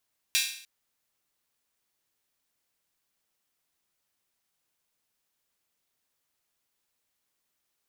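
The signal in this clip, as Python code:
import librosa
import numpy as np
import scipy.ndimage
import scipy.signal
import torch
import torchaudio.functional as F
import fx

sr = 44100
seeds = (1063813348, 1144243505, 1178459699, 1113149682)

y = fx.drum_hat_open(sr, length_s=0.3, from_hz=2700.0, decay_s=0.58)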